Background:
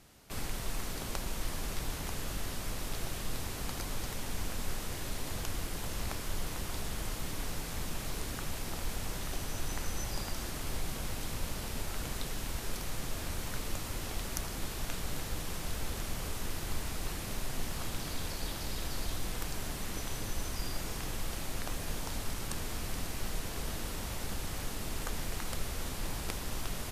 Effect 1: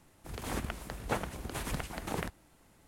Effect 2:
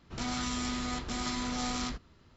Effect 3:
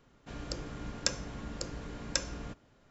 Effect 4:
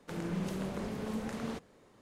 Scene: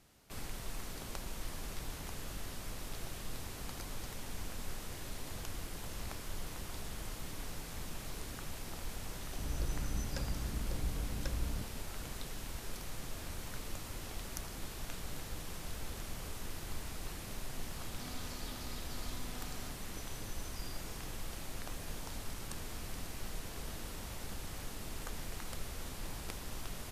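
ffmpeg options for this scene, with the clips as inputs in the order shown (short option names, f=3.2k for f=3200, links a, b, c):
-filter_complex "[0:a]volume=-6dB[a];[3:a]aemphasis=mode=reproduction:type=riaa,atrim=end=2.9,asetpts=PTS-STARTPTS,volume=-10dB,afade=t=in:d=0.004:c=hsin,afade=t=out:st=2.896:d=0.004:c=hsin,adelay=9100[b];[2:a]atrim=end=2.36,asetpts=PTS-STARTPTS,volume=-17.5dB,afade=t=in:d=0.004:c=hsin,afade=t=out:st=2.356:d=0.004:c=hsin,adelay=784980S[c];[a][b][c]amix=inputs=3:normalize=0"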